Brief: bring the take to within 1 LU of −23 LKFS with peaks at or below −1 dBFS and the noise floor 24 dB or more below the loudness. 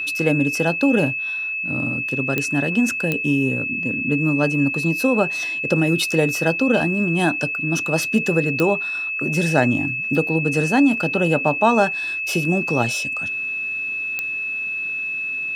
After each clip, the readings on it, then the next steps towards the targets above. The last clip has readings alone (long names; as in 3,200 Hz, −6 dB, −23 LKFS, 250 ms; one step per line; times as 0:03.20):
number of clicks 4; interfering tone 2,600 Hz; level of the tone −23 dBFS; integrated loudness −20.0 LKFS; sample peak −1.5 dBFS; target loudness −23.0 LKFS
→ click removal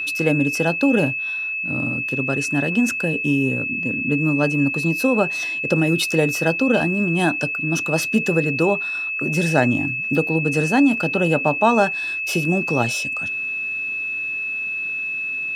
number of clicks 0; interfering tone 2,600 Hz; level of the tone −23 dBFS
→ notch filter 2,600 Hz, Q 30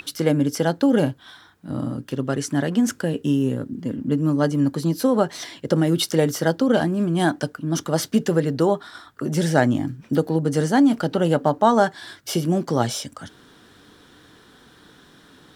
interfering tone none found; integrated loudness −21.5 LKFS; sample peak −1.5 dBFS; target loudness −23.0 LKFS
→ level −1.5 dB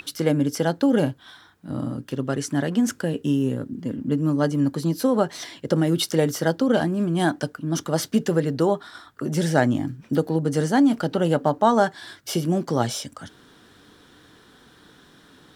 integrated loudness −23.0 LKFS; sample peak −3.0 dBFS; background noise floor −53 dBFS